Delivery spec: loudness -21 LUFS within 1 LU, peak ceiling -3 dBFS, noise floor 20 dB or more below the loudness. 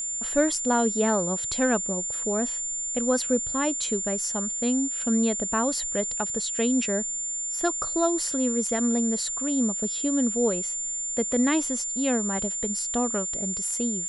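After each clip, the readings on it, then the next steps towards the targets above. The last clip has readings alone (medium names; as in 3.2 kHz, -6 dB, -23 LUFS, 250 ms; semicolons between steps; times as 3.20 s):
steady tone 7.2 kHz; tone level -28 dBFS; loudness -25.0 LUFS; peak level -9.5 dBFS; loudness target -21.0 LUFS
-> band-stop 7.2 kHz, Q 30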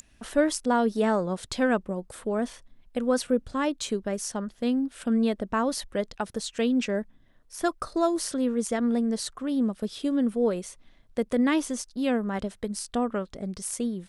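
steady tone not found; loudness -28.0 LUFS; peak level -10.5 dBFS; loudness target -21.0 LUFS
-> trim +7 dB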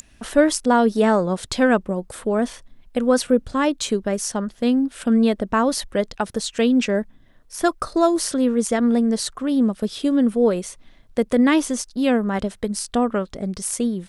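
loudness -21.0 LUFS; peak level -3.5 dBFS; noise floor -52 dBFS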